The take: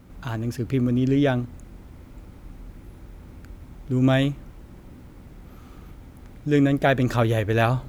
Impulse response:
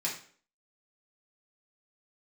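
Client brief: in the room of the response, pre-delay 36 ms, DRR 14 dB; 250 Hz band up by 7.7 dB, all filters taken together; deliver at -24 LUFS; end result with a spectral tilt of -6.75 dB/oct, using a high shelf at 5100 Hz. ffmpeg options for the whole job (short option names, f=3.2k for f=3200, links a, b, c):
-filter_complex "[0:a]equalizer=f=250:t=o:g=8.5,highshelf=f=5.1k:g=3,asplit=2[a][b];[1:a]atrim=start_sample=2205,adelay=36[c];[b][c]afir=irnorm=-1:irlink=0,volume=-19dB[d];[a][d]amix=inputs=2:normalize=0,volume=-7dB"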